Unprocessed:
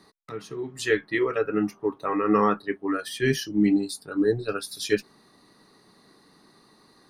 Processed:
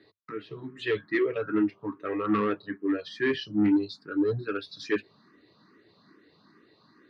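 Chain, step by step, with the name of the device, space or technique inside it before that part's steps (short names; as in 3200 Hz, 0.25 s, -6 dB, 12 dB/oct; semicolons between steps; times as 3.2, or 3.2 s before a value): barber-pole phaser into a guitar amplifier (endless phaser +2.4 Hz; soft clip -20.5 dBFS, distortion -12 dB; speaker cabinet 90–4200 Hz, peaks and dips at 100 Hz +7 dB, 320 Hz +5 dB, 800 Hz -9 dB, 1600 Hz +4 dB)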